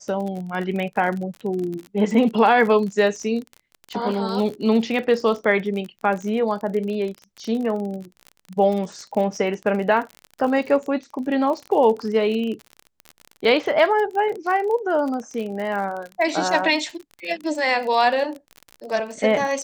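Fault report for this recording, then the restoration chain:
crackle 40/s -28 dBFS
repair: de-click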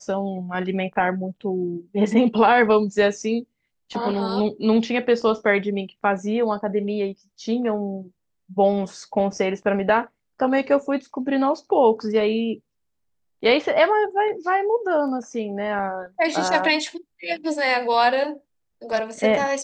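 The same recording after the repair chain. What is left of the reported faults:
none

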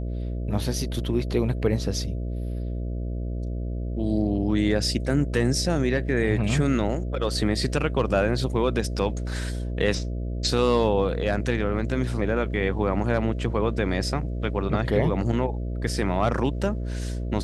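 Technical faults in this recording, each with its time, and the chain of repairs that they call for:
buzz 60 Hz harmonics 11 -29 dBFS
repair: de-hum 60 Hz, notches 11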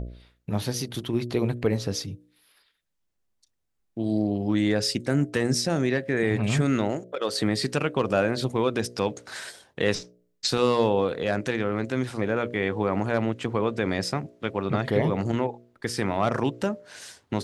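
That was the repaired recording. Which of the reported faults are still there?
none

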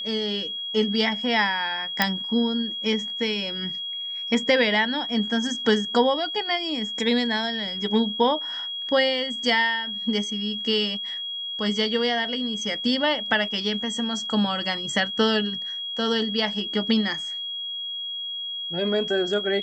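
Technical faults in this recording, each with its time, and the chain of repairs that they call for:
tone 3300 Hz -29 dBFS
2.02 pop -4 dBFS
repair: de-click; notch 3300 Hz, Q 30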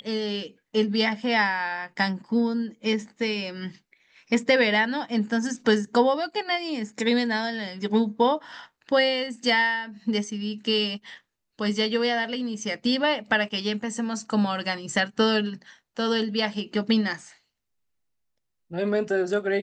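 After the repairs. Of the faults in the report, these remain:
none

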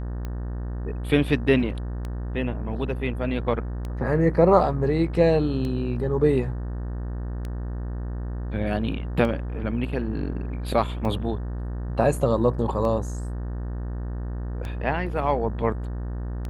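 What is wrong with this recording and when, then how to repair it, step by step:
buzz 60 Hz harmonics 31 -30 dBFS
tick 33 1/3 rpm -20 dBFS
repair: de-click; de-hum 60 Hz, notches 31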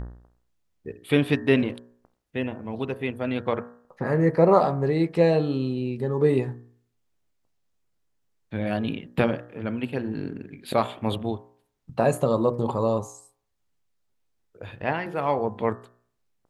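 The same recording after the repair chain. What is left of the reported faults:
none

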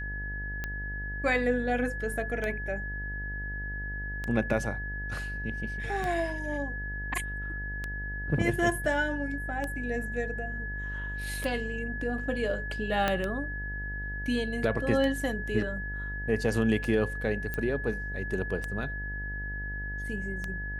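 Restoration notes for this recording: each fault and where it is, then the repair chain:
buzz 50 Hz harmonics 20 -37 dBFS
tick 33 1/3 rpm -19 dBFS
tone 1700 Hz -36 dBFS
13.08 pop -12 dBFS
17.54 pop -19 dBFS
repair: de-click; de-hum 50 Hz, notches 20; notch 1700 Hz, Q 30

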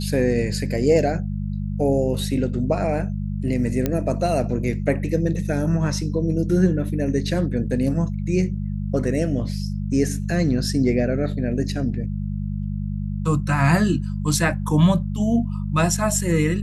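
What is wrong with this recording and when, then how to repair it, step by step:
hum 50 Hz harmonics 4 -26 dBFS
3.86 pop -8 dBFS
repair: de-click; de-hum 50 Hz, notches 4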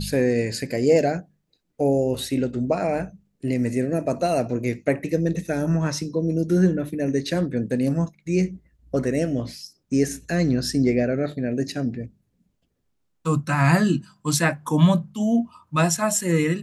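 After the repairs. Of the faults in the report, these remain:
none

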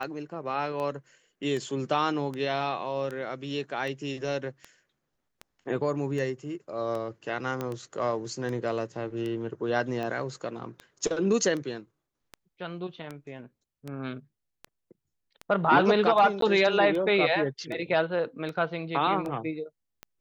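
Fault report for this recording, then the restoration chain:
tick 78 rpm -23 dBFS
7.61 pop -18 dBFS
16.41–16.42 gap 13 ms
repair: de-click; interpolate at 16.41, 13 ms

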